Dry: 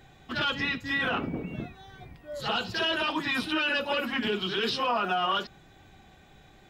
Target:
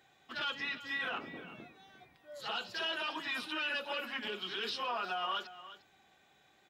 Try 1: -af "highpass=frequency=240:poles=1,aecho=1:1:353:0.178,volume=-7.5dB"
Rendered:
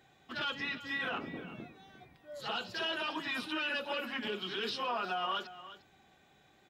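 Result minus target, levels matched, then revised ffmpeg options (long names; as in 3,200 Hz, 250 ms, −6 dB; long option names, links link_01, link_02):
250 Hz band +4.5 dB
-af "highpass=frequency=640:poles=1,aecho=1:1:353:0.178,volume=-7.5dB"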